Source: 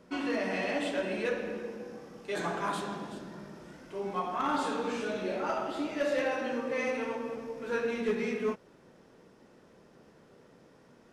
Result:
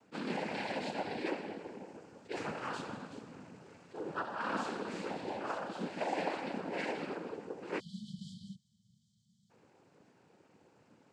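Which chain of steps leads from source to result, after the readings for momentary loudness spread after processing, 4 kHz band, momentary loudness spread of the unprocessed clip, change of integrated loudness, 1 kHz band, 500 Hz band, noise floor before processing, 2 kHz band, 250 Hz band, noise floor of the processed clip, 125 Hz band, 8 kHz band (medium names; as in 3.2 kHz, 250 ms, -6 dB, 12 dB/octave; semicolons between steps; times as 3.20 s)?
14 LU, -4.5 dB, 13 LU, -6.5 dB, -4.5 dB, -8.5 dB, -60 dBFS, -6.0 dB, -6.0 dB, -72 dBFS, -2.5 dB, -7.0 dB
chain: noise-vocoded speech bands 8; spectral selection erased 7.80–9.50 s, 230–3000 Hz; attacks held to a fixed rise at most 440 dB/s; trim -5.5 dB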